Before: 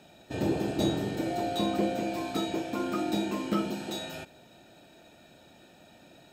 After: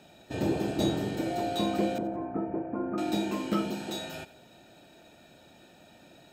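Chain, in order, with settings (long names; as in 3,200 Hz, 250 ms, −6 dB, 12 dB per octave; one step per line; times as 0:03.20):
0:01.98–0:02.98: Gaussian smoothing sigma 6.3 samples
on a send: feedback echo with a high-pass in the loop 90 ms, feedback 37%, level −18 dB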